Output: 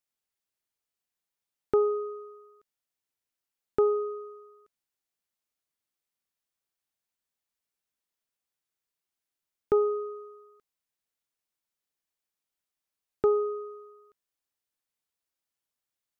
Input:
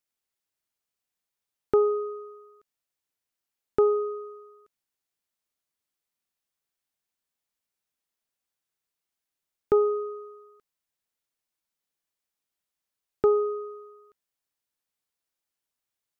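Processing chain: gain -2.5 dB

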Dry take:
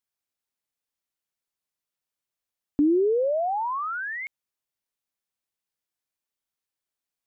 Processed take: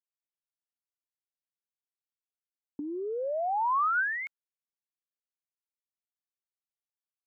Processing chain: expander -27 dBFS; bell 1400 Hz +6.5 dB 0.31 oct; negative-ratio compressor -30 dBFS, ratio -1

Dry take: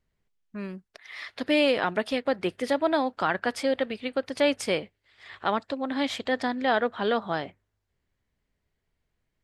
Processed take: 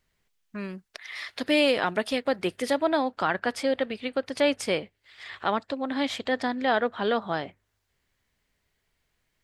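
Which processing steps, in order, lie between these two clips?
1.15–2.84 high shelf 5700 Hz +8 dB; mismatched tape noise reduction encoder only

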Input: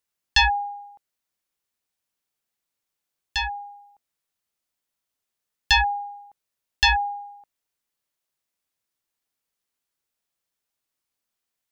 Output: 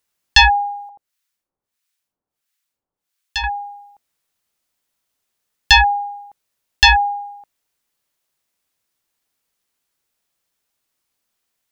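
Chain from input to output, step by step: 0.89–3.44 harmonic tremolo 1.5 Hz, depth 100%, crossover 1100 Hz; gain +8 dB

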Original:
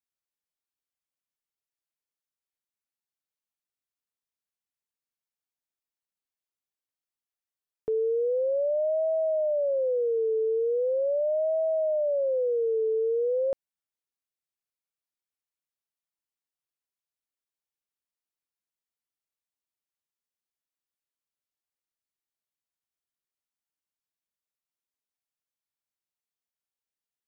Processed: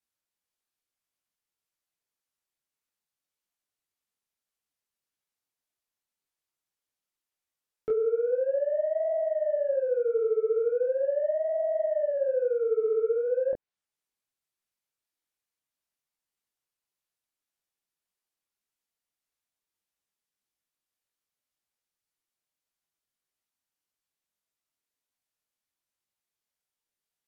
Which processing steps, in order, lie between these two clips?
soft clip -26.5 dBFS, distortion -18 dB; treble ducked by the level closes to 720 Hz, closed at -28.5 dBFS; detuned doubles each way 60 cents; gain +7.5 dB

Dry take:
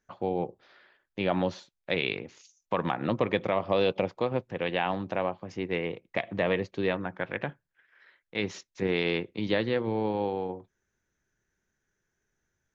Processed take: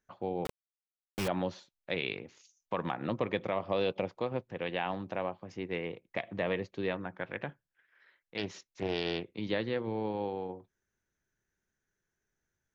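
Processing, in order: 0.45–1.28 companded quantiser 2-bit; 8.37–9.24 Doppler distortion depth 0.39 ms; gain -5.5 dB

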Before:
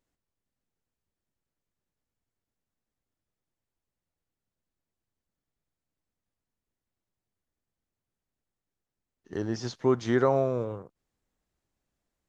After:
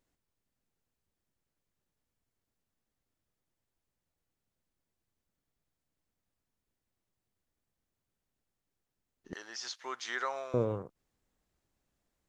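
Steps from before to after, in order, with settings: 9.33–10.54 HPF 1500 Hz 12 dB/oct; gain +1.5 dB

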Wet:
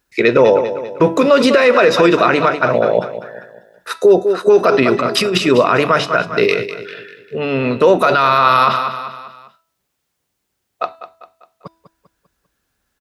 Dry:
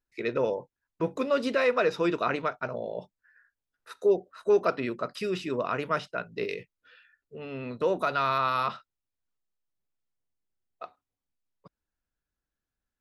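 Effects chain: HPF 40 Hz; low shelf 260 Hz -4 dB; de-hum 328.6 Hz, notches 33; 4.82–5.38 negative-ratio compressor -36 dBFS, ratio -1; feedback echo 0.198 s, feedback 45%, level -13 dB; maximiser +22 dB; gain -1 dB

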